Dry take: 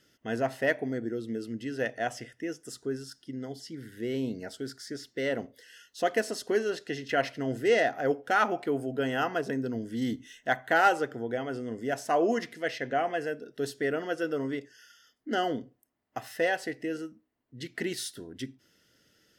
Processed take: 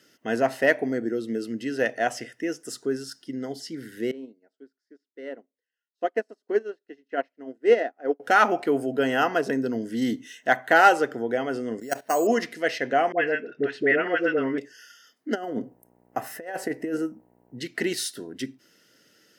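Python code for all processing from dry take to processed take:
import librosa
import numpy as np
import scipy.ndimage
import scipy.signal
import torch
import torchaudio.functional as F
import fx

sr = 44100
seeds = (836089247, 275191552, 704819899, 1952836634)

y = fx.chain(x, sr, fx.lowpass(hz=1700.0, slope=6),
    fx.low_shelf_res(hz=190.0, db=-10.5, q=1.5),
    fx.upward_expand(threshold_db=-44.0, expansion=2.5), at=(4.11, 8.2))
y = fx.chain(y, sr, fx.level_steps(step_db=14),
    fx.resample_bad(factor=6, down='filtered', up='hold'), at=(11.8, 12.27))
y = fx.chain(y, sr, fx.lowpass_res(hz=2300.0, q=2.7),
    fx.dispersion(late='highs', ms=65.0, hz=730.0), at=(13.12, 14.58))
y = fx.peak_eq(y, sr, hz=3900.0, db=-13.0, octaves=1.7, at=(15.34, 17.58), fade=0.02)
y = fx.dmg_buzz(y, sr, base_hz=60.0, harmonics=16, level_db=-68.0, tilt_db=-5, odd_only=False, at=(15.34, 17.58), fade=0.02)
y = fx.over_compress(y, sr, threshold_db=-34.0, ratio=-0.5, at=(15.34, 17.58), fade=0.02)
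y = scipy.signal.sosfilt(scipy.signal.butter(2, 190.0, 'highpass', fs=sr, output='sos'), y)
y = fx.notch(y, sr, hz=3400.0, q=14.0)
y = y * 10.0 ** (6.5 / 20.0)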